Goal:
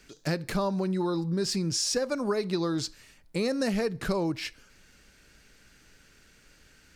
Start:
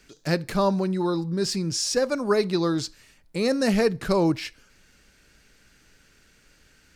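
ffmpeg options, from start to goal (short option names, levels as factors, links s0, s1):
-af "acompressor=threshold=0.0631:ratio=10"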